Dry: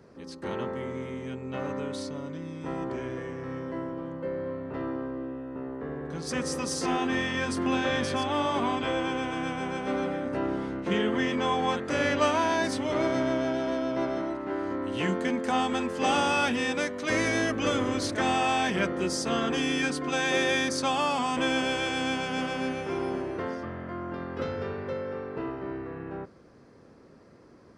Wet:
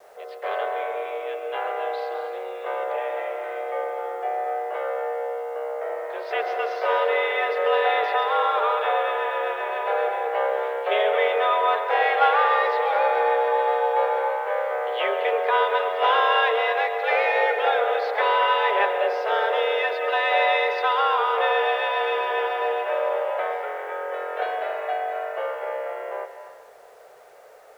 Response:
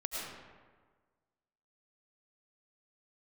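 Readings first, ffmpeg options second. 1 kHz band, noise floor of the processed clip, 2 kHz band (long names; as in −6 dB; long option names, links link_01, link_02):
+9.5 dB, −45 dBFS, +6.0 dB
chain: -filter_complex "[0:a]adynamicequalizer=threshold=0.00398:dfrequency=2800:dqfactor=2:tfrequency=2800:tqfactor=2:attack=5:release=100:ratio=0.375:range=3.5:mode=cutabove:tftype=bell,highpass=frequency=230:width_type=q:width=0.5412,highpass=frequency=230:width_type=q:width=1.307,lowpass=frequency=3400:width_type=q:width=0.5176,lowpass=frequency=3400:width_type=q:width=0.7071,lowpass=frequency=3400:width_type=q:width=1.932,afreqshift=210,acrusher=bits=10:mix=0:aa=0.000001,asplit=2[link_01][link_02];[1:a]atrim=start_sample=2205,asetrate=61740,aresample=44100,adelay=136[link_03];[link_02][link_03]afir=irnorm=-1:irlink=0,volume=-7.5dB[link_04];[link_01][link_04]amix=inputs=2:normalize=0,acontrast=55"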